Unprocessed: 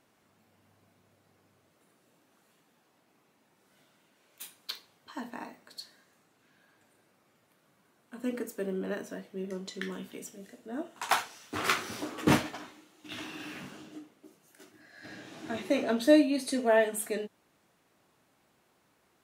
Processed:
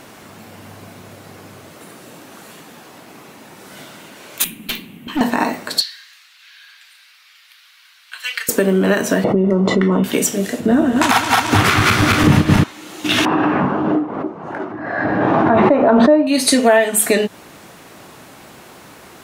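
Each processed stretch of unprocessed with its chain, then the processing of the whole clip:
0:04.44–0:05.21: drawn EQ curve 120 Hz 0 dB, 210 Hz +14 dB, 350 Hz +1 dB, 520 Hz −11 dB, 1,500 Hz −11 dB, 2,700 Hz +2 dB, 5,000 Hz −20 dB, 13,000 Hz −2 dB + tube saturation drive 44 dB, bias 0.5
0:05.81–0:08.49: Bessel high-pass filter 2,500 Hz, order 4 + high shelf with overshoot 5,800 Hz −9 dB, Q 1.5
0:09.24–0:10.04: Savitzky-Golay smoothing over 65 samples + envelope flattener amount 70%
0:10.60–0:12.64: feedback delay that plays each chunk backwards 109 ms, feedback 76%, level −4 dB + bass and treble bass +13 dB, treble −4 dB
0:13.25–0:16.27: low-pass with resonance 1,000 Hz, resonance Q 2.1 + background raised ahead of every attack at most 44 dB per second
whole clip: dynamic equaliser 360 Hz, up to −5 dB, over −40 dBFS, Q 0.72; downward compressor 4 to 1, threshold −40 dBFS; boost into a limiter +29.5 dB; level −1 dB

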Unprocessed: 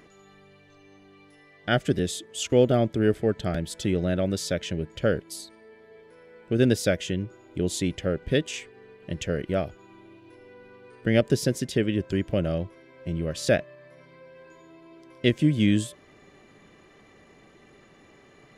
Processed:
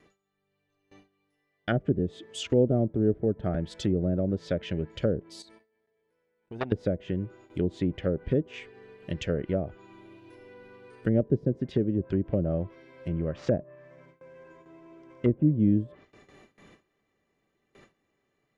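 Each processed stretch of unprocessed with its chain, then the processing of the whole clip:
0:05.42–0:06.72: output level in coarse steps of 18 dB + saturating transformer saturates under 1,700 Hz
0:13.08–0:15.55: variable-slope delta modulation 64 kbit/s + low-pass filter 5,700 Hz 24 dB per octave + parametric band 4,300 Hz −14.5 dB 1.1 octaves
whole clip: noise gate with hold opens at −43 dBFS; treble cut that deepens with the level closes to 490 Hz, closed at −20.5 dBFS; automatic gain control gain up to 7.5 dB; level −8 dB

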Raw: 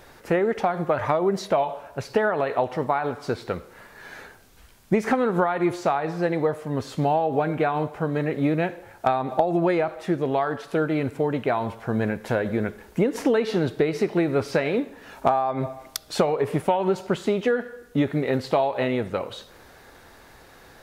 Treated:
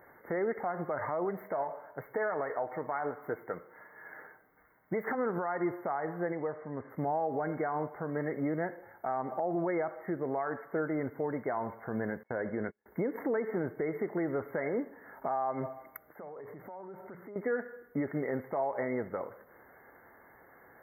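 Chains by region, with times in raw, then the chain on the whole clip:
0:01.25–0:05.15: low-shelf EQ 200 Hz −6 dB + comb filter 6.5 ms, depth 35% + windowed peak hold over 3 samples
0:06.32–0:06.90: low-pass filter 3,900 Hz + downward compressor 1.5 to 1, threshold −30 dBFS
0:12.23–0:12.86: low-pass filter 8,400 Hz + hard clipping −13 dBFS + noise gate −31 dBFS, range −33 dB
0:16.02–0:17.36: mains-hum notches 60/120/180 Hz + transient designer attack −3 dB, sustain +7 dB + downward compressor 4 to 1, threshold −38 dBFS
whole clip: high-pass filter 230 Hz 6 dB per octave; brick-wall band-stop 2,200–12,000 Hz; brickwall limiter −17 dBFS; level −6.5 dB

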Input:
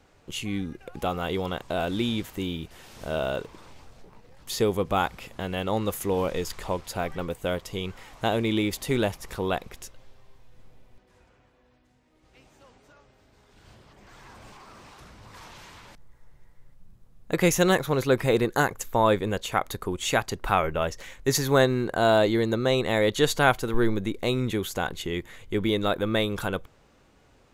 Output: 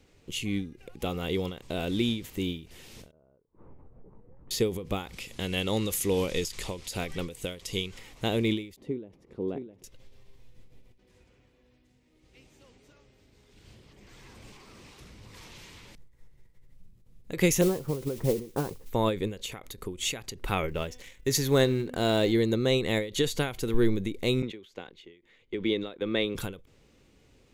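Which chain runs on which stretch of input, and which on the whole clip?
0:03.11–0:04.51: low-pass filter 1,200 Hz 24 dB per octave + gate with flip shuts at −32 dBFS, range −31 dB
0:05.13–0:07.99: low-pass filter 11,000 Hz + high-shelf EQ 2,500 Hz +9.5 dB
0:08.76–0:09.84: resonant band-pass 300 Hz, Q 1.2 + single-tap delay 658 ms −9.5 dB
0:17.61–0:18.90: low-pass filter 1,200 Hz 24 dB per octave + noise that follows the level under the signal 17 dB + double-tracking delay 13 ms −13 dB
0:20.68–0:22.32: mu-law and A-law mismatch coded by A + hum removal 249.7 Hz, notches 14
0:24.42–0:26.35: noise gate −33 dBFS, range −11 dB + three-way crossover with the lows and the highs turned down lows −12 dB, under 220 Hz, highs −21 dB, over 4,800 Hz
whole clip: flat-topped bell 1,000 Hz −8.5 dB; every ending faded ahead of time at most 130 dB per second

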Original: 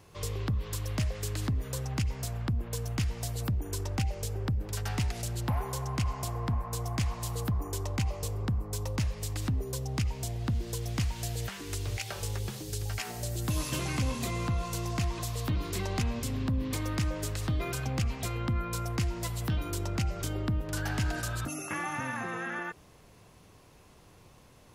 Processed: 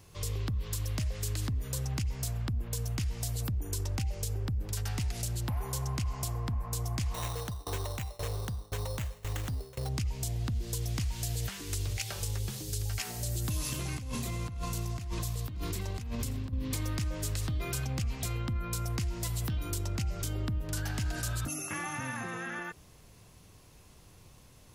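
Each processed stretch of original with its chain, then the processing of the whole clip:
0:07.14–0:09.89: flat-topped bell 960 Hz +9.5 dB 2.6 octaves + sample-rate reduction 4,800 Hz + shaped tremolo saw down 1.9 Hz, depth 95%
0:13.73–0:16.53: parametric band 5,300 Hz −3 dB 2.6 octaves + single-tap delay 583 ms −16.5 dB + compressor whose output falls as the input rises −36 dBFS
whole clip: low-shelf EQ 180 Hz +9 dB; brickwall limiter −21.5 dBFS; high-shelf EQ 2,900 Hz +9.5 dB; level −5 dB

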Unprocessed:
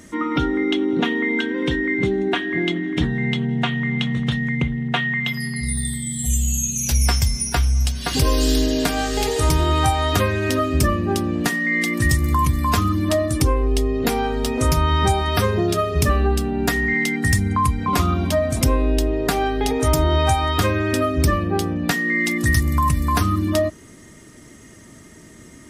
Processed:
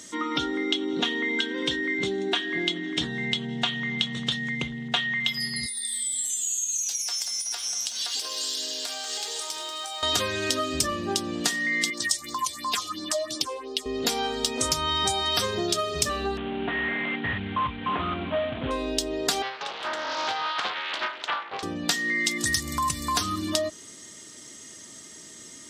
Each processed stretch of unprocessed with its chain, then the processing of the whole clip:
0:05.66–0:10.03: high-pass filter 570 Hz + downward compressor 16 to 1, threshold −31 dBFS + feedback echo at a low word length 188 ms, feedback 55%, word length 8 bits, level −8.5 dB
0:11.90–0:13.86: meter weighting curve A + all-pass phaser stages 4, 2.9 Hz, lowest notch 210–2,600 Hz
0:16.37–0:18.71: variable-slope delta modulation 16 kbit/s + highs frequency-modulated by the lows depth 0.15 ms
0:19.42–0:21.63: flat-topped band-pass 1,400 Hz, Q 0.97 + highs frequency-modulated by the lows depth 0.57 ms
whole clip: high-pass filter 400 Hz 6 dB per octave; flat-topped bell 5,100 Hz +11 dB; downward compressor 2 to 1, threshold −21 dBFS; level −3 dB

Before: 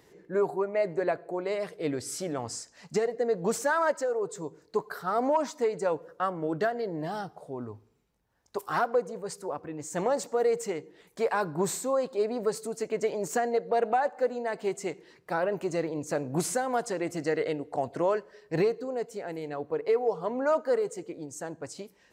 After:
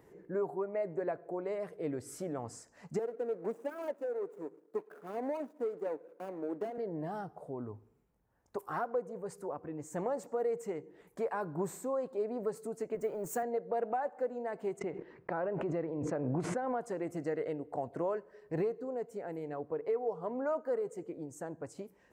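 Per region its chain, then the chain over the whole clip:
0:02.99–0:06.78: running median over 41 samples + high-pass filter 240 Hz 24 dB per octave + parametric band 1,800 Hz −3.5 dB 1.7 octaves
0:12.95–0:13.43: mu-law and A-law mismatch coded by mu + high-shelf EQ 8,700 Hz +11 dB + multiband upward and downward expander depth 70%
0:14.79–0:16.81: low-pass filter 3,000 Hz + noise gate −49 dBFS, range −35 dB + background raised ahead of every attack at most 28 dB per second
whole clip: high-shelf EQ 7,500 Hz −4.5 dB; downward compressor 1.5 to 1, threshold −42 dBFS; parametric band 4,200 Hz −14 dB 1.8 octaves

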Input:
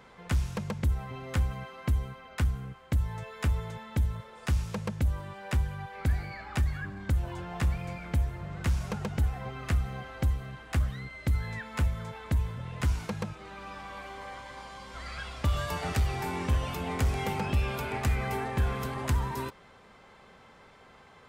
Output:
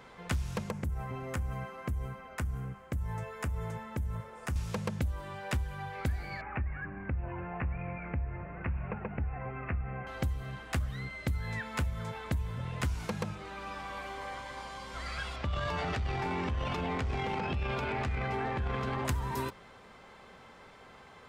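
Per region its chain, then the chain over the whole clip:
0:00.70–0:04.56: downward compressor 4 to 1, threshold −31 dBFS + parametric band 3,800 Hz −10.5 dB 0.95 octaves
0:06.41–0:10.07: Chebyshev low-pass filter 2,600 Hz, order 6 + downward compressor 1.5 to 1, threshold −38 dBFS
0:15.36–0:19.05: low-pass filter 4,100 Hz + transient designer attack −4 dB, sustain +10 dB + downward compressor, threshold −29 dBFS
whole clip: mains-hum notches 50/100/150/200 Hz; downward compressor, threshold −30 dBFS; level +1.5 dB

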